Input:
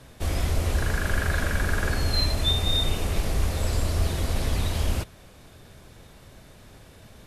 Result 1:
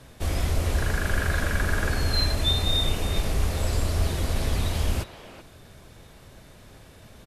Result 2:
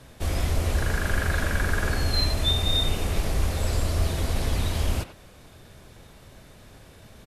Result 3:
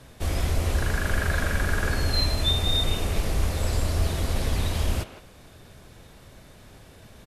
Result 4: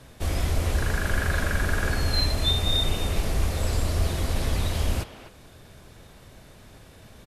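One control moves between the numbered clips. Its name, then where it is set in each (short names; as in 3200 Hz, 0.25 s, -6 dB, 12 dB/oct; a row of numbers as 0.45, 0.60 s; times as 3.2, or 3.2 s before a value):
speakerphone echo, time: 380, 90, 160, 250 ms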